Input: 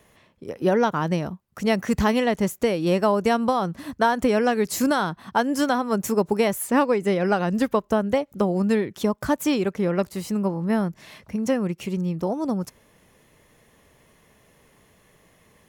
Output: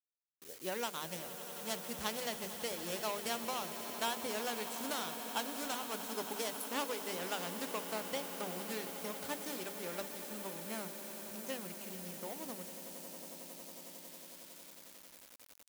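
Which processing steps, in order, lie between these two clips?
median filter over 25 samples; Chebyshev low-pass 12 kHz, order 2; bass shelf 240 Hz -10 dB; hum notches 50/100/150/200/250/300/350/400/450 Hz; echo with a slow build-up 91 ms, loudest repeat 8, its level -16 dB; word length cut 8-bit, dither none; pre-emphasis filter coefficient 0.9; trim +2 dB

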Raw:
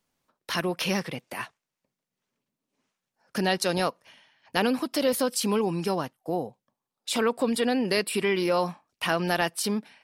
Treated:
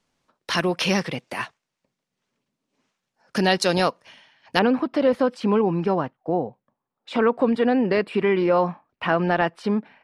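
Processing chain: low-pass 7.4 kHz 12 dB/octave, from 4.59 s 1.8 kHz; trim +5.5 dB

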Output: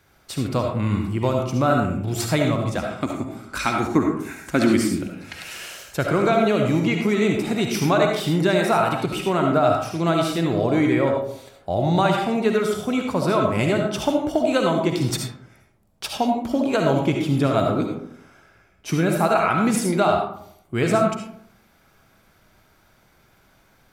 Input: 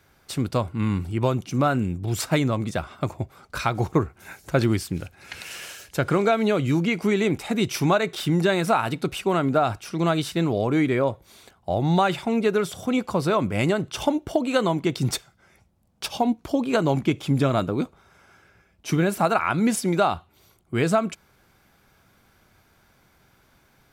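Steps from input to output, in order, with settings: 2.79–5.01 s: graphic EQ 125/250/500/2000/8000 Hz -10/+11/-6/+4/+6 dB; algorithmic reverb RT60 0.68 s, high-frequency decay 0.45×, pre-delay 30 ms, DRR 1.5 dB

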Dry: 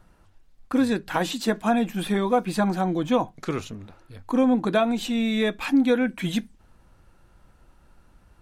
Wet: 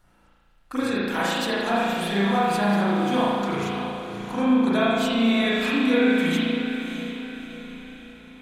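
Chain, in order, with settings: tilt shelf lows -5 dB, about 1.5 kHz; echo that smears into a reverb 631 ms, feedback 47%, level -9 dB; spring tank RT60 1.7 s, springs 35 ms, chirp 50 ms, DRR -8.5 dB; trim -5 dB

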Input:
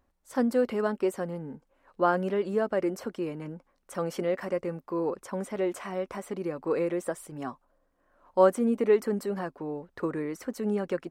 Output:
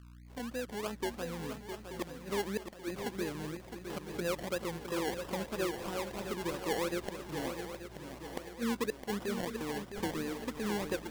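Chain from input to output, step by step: fade-in on the opening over 1.61 s; 8.53–9.08 s: elliptic band-pass 160–540 Hz; in parallel at +2.5 dB: compression 10:1, threshold -38 dBFS, peak gain reduction 23 dB; on the sum: hum 60 Hz, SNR 16 dB; inverted gate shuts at -15 dBFS, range -29 dB; decimation with a swept rate 28×, swing 60% 3 Hz; on a send: shuffle delay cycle 881 ms, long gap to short 3:1, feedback 47%, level -8 dB; on the sum: trim -8.5 dB

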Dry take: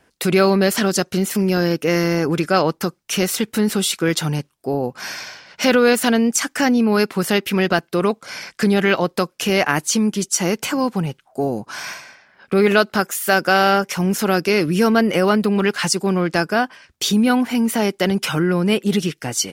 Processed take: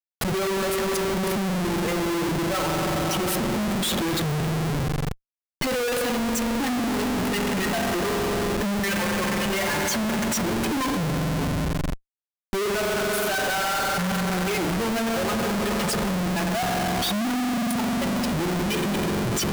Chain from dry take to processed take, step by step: expander on every frequency bin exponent 3; spring tank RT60 3.8 s, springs 44 ms, chirp 50 ms, DRR 2 dB; Schmitt trigger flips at -36 dBFS

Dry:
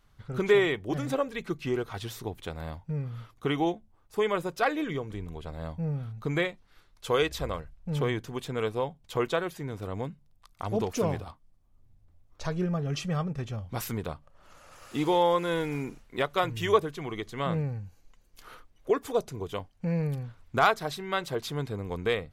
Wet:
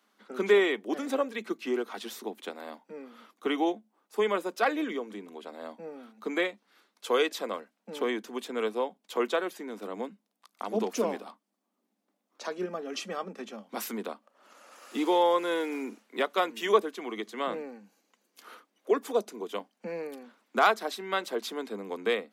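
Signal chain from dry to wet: steep high-pass 200 Hz 96 dB/octave

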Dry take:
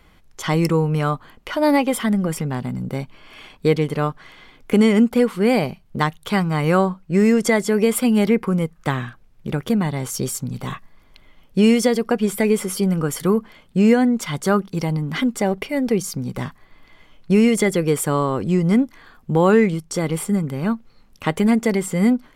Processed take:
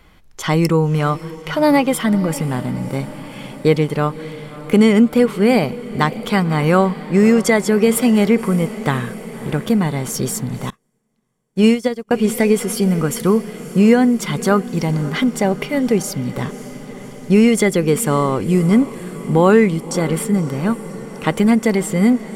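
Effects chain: echo that smears into a reverb 573 ms, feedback 68%, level -16 dB; 10.70–12.11 s: upward expansion 2.5:1, over -35 dBFS; trim +3 dB

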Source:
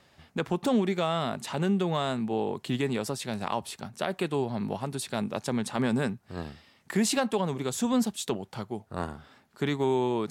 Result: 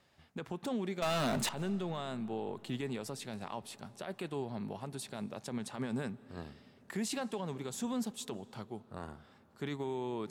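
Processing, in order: peak limiter -19.5 dBFS, peak gain reduction 7 dB; 1.02–1.49 s: waveshaping leveller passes 5; algorithmic reverb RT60 4.5 s, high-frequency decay 0.45×, pre-delay 115 ms, DRR 20 dB; trim -8.5 dB

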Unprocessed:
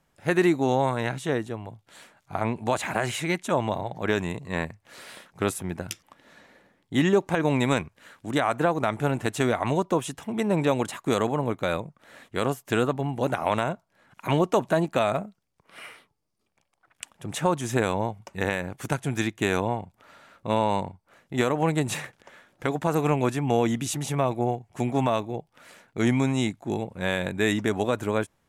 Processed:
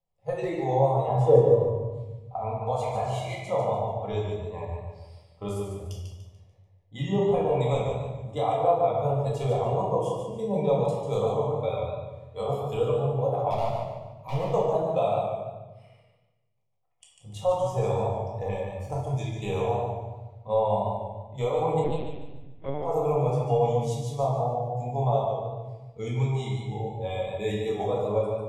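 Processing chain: low-pass 1.7 kHz 6 dB/octave; spectral noise reduction 14 dB; 1.08–1.65 s: graphic EQ 125/250/500/1000 Hz +8/+7/+9/+10 dB; 13.50–14.46 s: hard clipper -23 dBFS, distortion -23 dB; static phaser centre 630 Hz, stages 4; reverberation RT60 0.90 s, pre-delay 4 ms, DRR -4 dB; 21.84–22.83 s: LPC vocoder at 8 kHz pitch kept; modulated delay 146 ms, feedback 36%, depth 53 cents, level -6 dB; trim -3.5 dB

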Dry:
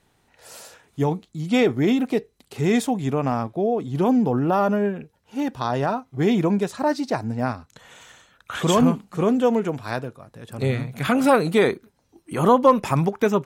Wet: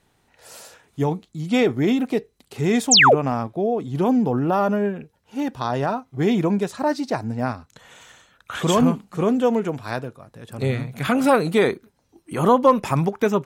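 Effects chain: painted sound fall, 2.91–3.15 s, 360–8300 Hz -12 dBFS

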